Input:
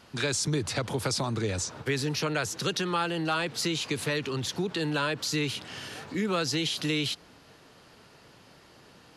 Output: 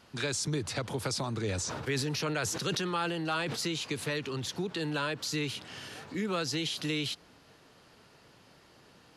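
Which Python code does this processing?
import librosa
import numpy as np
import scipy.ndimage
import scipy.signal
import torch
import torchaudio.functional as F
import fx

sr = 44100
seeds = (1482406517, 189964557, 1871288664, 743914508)

y = fx.sustainer(x, sr, db_per_s=25.0, at=(1.43, 3.55), fade=0.02)
y = F.gain(torch.from_numpy(y), -4.0).numpy()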